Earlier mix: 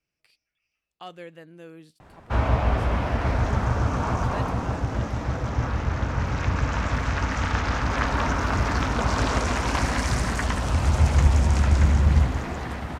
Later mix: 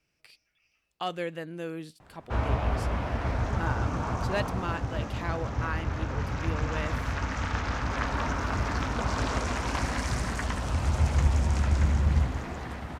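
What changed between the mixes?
speech +8.0 dB
background −5.5 dB

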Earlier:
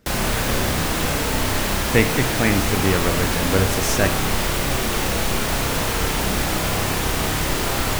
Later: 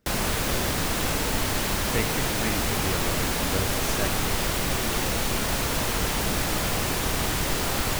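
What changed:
speech −11.5 dB
background: send −11.0 dB

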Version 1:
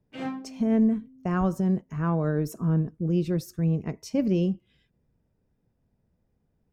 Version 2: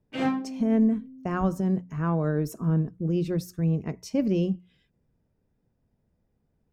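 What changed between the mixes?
background +7.0 dB
master: add mains-hum notches 60/120/180 Hz

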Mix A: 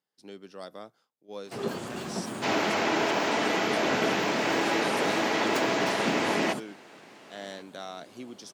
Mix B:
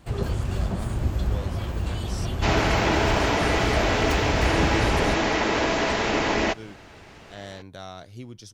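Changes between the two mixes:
first sound: entry −1.45 s
second sound +3.5 dB
master: remove high-pass filter 200 Hz 24 dB per octave

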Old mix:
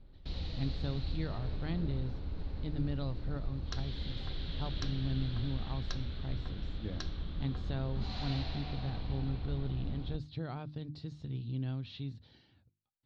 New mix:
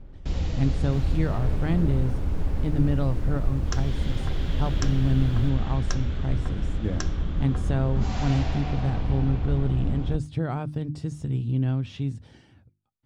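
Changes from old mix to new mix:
second sound +5.5 dB
master: remove transistor ladder low-pass 4,400 Hz, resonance 75%

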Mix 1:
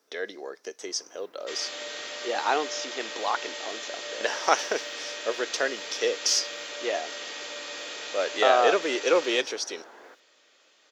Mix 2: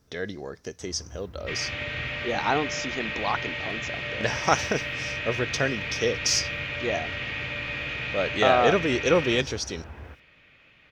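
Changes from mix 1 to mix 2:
second sound: add low-pass with resonance 2,400 Hz, resonance Q 4
master: remove high-pass filter 350 Hz 24 dB per octave

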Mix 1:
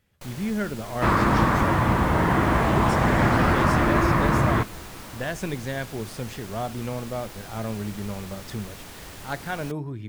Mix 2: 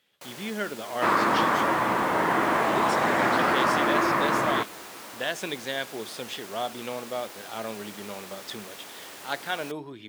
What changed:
speech: add parametric band 3,400 Hz +10.5 dB 0.71 octaves
master: add high-pass filter 340 Hz 12 dB per octave

